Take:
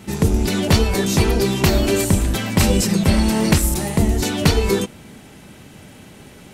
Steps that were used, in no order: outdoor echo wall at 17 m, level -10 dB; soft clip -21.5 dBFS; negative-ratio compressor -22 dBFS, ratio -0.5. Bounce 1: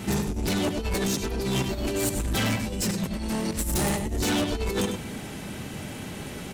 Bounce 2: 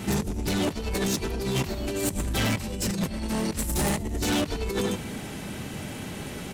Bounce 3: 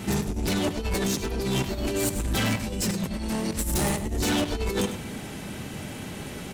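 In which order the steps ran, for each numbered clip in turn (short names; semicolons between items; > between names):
negative-ratio compressor > outdoor echo > soft clip; outdoor echo > negative-ratio compressor > soft clip; negative-ratio compressor > soft clip > outdoor echo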